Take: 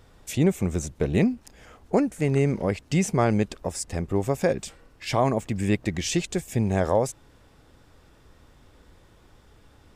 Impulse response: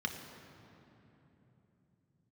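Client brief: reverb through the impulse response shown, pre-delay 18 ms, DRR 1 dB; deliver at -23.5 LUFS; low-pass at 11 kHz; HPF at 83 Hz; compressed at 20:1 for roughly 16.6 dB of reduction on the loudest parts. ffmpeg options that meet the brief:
-filter_complex "[0:a]highpass=83,lowpass=11000,acompressor=threshold=0.0224:ratio=20,asplit=2[s0][s1];[1:a]atrim=start_sample=2205,adelay=18[s2];[s1][s2]afir=irnorm=-1:irlink=0,volume=0.562[s3];[s0][s3]amix=inputs=2:normalize=0,volume=4.22"

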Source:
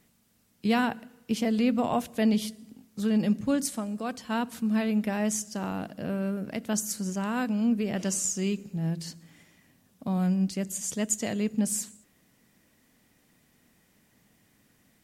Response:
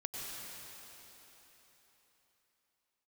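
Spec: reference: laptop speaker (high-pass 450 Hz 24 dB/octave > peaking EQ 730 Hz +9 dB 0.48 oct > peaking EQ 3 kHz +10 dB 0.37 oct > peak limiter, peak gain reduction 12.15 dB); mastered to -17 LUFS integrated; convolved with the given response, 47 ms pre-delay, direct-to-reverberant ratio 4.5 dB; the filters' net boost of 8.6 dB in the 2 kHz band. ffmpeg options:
-filter_complex "[0:a]equalizer=f=2000:t=o:g=9,asplit=2[s0][s1];[1:a]atrim=start_sample=2205,adelay=47[s2];[s1][s2]afir=irnorm=-1:irlink=0,volume=0.501[s3];[s0][s3]amix=inputs=2:normalize=0,highpass=f=450:w=0.5412,highpass=f=450:w=1.3066,equalizer=f=730:t=o:w=0.48:g=9,equalizer=f=3000:t=o:w=0.37:g=10,volume=5.01,alimiter=limit=0.473:level=0:latency=1"

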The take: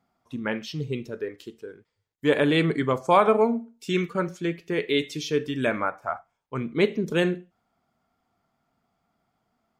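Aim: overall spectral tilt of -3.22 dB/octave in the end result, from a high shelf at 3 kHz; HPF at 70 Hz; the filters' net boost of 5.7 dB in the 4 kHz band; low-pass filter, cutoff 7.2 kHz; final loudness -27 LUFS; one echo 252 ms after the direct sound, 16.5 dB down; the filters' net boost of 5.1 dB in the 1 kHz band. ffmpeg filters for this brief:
-af "highpass=70,lowpass=7200,equalizer=f=1000:t=o:g=5.5,highshelf=f=3000:g=5,equalizer=f=4000:t=o:g=3.5,aecho=1:1:252:0.15,volume=0.631"

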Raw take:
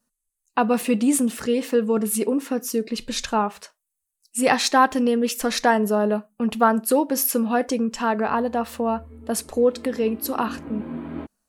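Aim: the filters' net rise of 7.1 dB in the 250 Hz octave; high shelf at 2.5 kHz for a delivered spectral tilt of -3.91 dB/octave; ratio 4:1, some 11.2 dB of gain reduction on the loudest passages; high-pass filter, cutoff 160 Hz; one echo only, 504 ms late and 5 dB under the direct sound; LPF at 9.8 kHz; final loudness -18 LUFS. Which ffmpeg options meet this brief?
-af "highpass=160,lowpass=9800,equalizer=f=250:t=o:g=8.5,highshelf=f=2500:g=3.5,acompressor=threshold=0.0708:ratio=4,aecho=1:1:504:0.562,volume=2.37"

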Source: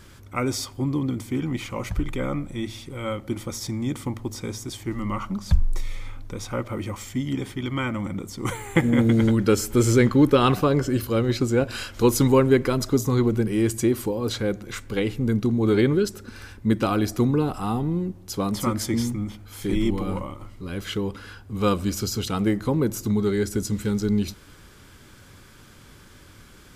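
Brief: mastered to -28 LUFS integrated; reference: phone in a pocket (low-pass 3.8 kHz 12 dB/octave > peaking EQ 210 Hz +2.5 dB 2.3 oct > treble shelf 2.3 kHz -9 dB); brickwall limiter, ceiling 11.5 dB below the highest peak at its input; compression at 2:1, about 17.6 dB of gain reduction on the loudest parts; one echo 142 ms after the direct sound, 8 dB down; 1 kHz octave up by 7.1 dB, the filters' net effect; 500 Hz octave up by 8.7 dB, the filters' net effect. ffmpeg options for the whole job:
-af "equalizer=f=500:t=o:g=8,equalizer=f=1000:t=o:g=8.5,acompressor=threshold=0.01:ratio=2,alimiter=level_in=1.19:limit=0.0631:level=0:latency=1,volume=0.841,lowpass=3800,equalizer=f=210:t=o:w=2.3:g=2.5,highshelf=f=2300:g=-9,aecho=1:1:142:0.398,volume=2.11"

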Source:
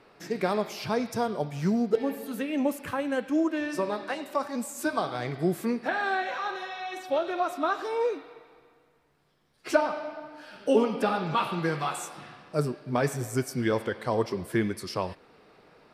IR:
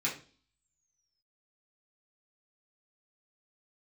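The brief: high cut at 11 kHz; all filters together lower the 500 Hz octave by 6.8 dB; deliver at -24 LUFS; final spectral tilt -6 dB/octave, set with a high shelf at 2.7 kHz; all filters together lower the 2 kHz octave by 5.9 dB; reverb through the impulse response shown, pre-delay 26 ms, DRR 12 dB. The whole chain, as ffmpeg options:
-filter_complex "[0:a]lowpass=11000,equalizer=f=500:t=o:g=-8,equalizer=f=2000:t=o:g=-4.5,highshelf=f=2700:g=-8,asplit=2[s0][s1];[1:a]atrim=start_sample=2205,adelay=26[s2];[s1][s2]afir=irnorm=-1:irlink=0,volume=0.126[s3];[s0][s3]amix=inputs=2:normalize=0,volume=2.82"

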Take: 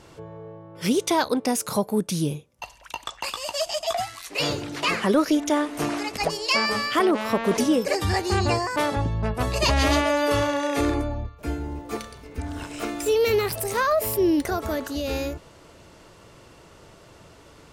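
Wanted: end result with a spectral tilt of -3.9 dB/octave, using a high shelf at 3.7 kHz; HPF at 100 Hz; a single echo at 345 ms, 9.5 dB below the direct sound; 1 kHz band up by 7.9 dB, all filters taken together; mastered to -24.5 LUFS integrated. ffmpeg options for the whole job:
-af "highpass=100,equalizer=f=1000:t=o:g=9,highshelf=f=3700:g=6.5,aecho=1:1:345:0.335,volume=0.596"

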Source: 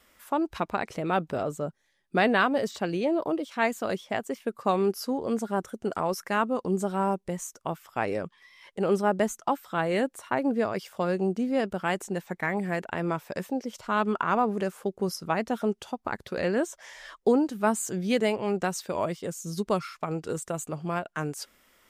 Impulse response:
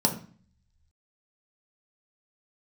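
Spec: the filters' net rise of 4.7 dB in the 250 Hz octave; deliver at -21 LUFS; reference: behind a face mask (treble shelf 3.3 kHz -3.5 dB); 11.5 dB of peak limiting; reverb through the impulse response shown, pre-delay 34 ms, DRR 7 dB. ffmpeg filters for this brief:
-filter_complex "[0:a]equalizer=f=250:t=o:g=6,alimiter=limit=0.0891:level=0:latency=1,asplit=2[s0][s1];[1:a]atrim=start_sample=2205,adelay=34[s2];[s1][s2]afir=irnorm=-1:irlink=0,volume=0.126[s3];[s0][s3]amix=inputs=2:normalize=0,highshelf=f=3300:g=-3.5,volume=2.24"

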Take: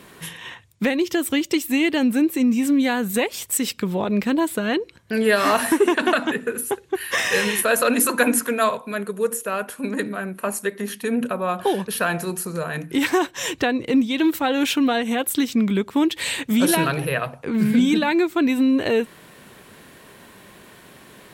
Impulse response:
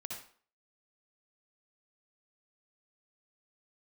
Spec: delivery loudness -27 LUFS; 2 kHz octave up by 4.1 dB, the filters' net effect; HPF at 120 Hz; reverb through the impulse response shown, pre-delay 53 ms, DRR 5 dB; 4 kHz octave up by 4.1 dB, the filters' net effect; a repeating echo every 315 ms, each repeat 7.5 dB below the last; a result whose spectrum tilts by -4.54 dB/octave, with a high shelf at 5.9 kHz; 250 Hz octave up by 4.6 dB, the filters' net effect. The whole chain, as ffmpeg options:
-filter_complex "[0:a]highpass=120,equalizer=f=250:t=o:g=5.5,equalizer=f=2000:t=o:g=4.5,equalizer=f=4000:t=o:g=6,highshelf=f=5900:g=-7.5,aecho=1:1:315|630|945|1260|1575:0.422|0.177|0.0744|0.0312|0.0131,asplit=2[s0][s1];[1:a]atrim=start_sample=2205,adelay=53[s2];[s1][s2]afir=irnorm=-1:irlink=0,volume=0.668[s3];[s0][s3]amix=inputs=2:normalize=0,volume=0.282"

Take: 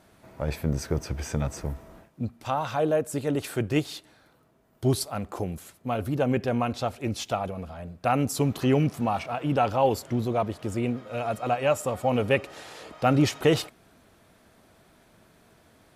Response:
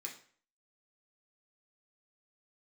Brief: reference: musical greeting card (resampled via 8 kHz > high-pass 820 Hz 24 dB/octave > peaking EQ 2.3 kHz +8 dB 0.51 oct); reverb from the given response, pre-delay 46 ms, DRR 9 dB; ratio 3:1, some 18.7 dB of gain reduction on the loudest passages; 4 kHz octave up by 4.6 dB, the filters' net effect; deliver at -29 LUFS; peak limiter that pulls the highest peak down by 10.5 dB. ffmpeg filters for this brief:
-filter_complex "[0:a]equalizer=f=4000:t=o:g=4,acompressor=threshold=0.00708:ratio=3,alimiter=level_in=3.76:limit=0.0631:level=0:latency=1,volume=0.266,asplit=2[s0][s1];[1:a]atrim=start_sample=2205,adelay=46[s2];[s1][s2]afir=irnorm=-1:irlink=0,volume=0.473[s3];[s0][s3]amix=inputs=2:normalize=0,aresample=8000,aresample=44100,highpass=f=820:w=0.5412,highpass=f=820:w=1.3066,equalizer=f=2300:t=o:w=0.51:g=8,volume=12.6"

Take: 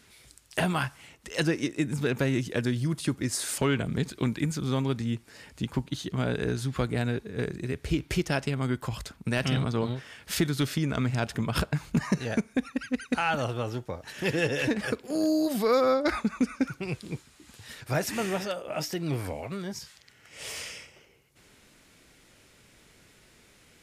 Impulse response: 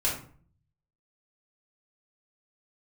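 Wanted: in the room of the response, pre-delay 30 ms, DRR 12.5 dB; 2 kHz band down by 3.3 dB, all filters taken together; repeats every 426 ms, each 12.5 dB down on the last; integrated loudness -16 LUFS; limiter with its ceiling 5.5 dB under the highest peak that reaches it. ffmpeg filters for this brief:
-filter_complex "[0:a]equalizer=f=2000:t=o:g=-4.5,alimiter=limit=0.0841:level=0:latency=1,aecho=1:1:426|852|1278:0.237|0.0569|0.0137,asplit=2[s0][s1];[1:a]atrim=start_sample=2205,adelay=30[s2];[s1][s2]afir=irnorm=-1:irlink=0,volume=0.0841[s3];[s0][s3]amix=inputs=2:normalize=0,volume=6.31"

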